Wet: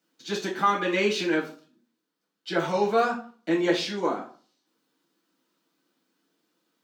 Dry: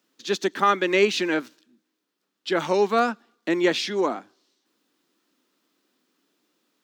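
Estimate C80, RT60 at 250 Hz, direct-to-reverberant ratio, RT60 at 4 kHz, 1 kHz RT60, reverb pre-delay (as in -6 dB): 14.0 dB, 0.50 s, -4.0 dB, 0.30 s, 0.45 s, 6 ms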